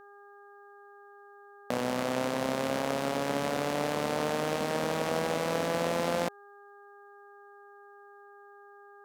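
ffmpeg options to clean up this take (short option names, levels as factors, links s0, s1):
-af "bandreject=f=405:t=h:w=4,bandreject=f=810:t=h:w=4,bandreject=f=1215:t=h:w=4,bandreject=f=1620:t=h:w=4"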